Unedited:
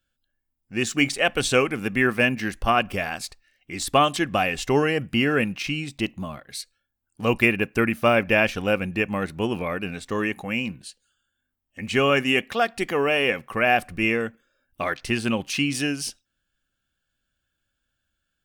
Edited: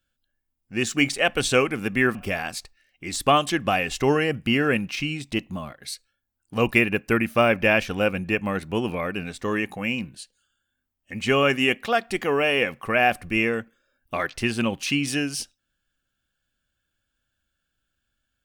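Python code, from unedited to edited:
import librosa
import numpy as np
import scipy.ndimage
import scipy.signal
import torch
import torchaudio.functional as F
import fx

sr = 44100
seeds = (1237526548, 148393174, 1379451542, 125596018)

y = fx.edit(x, sr, fx.cut(start_s=2.15, length_s=0.67), tone=tone)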